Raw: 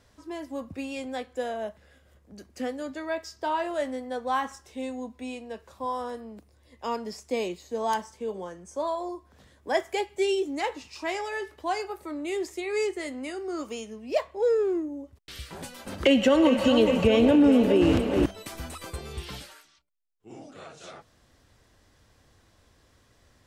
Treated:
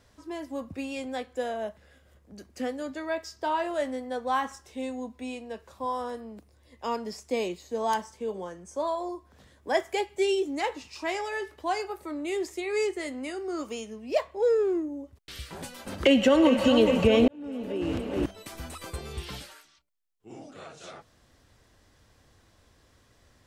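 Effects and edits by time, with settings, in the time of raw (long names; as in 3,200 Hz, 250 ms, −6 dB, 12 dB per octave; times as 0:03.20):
0:17.28–0:18.97: fade in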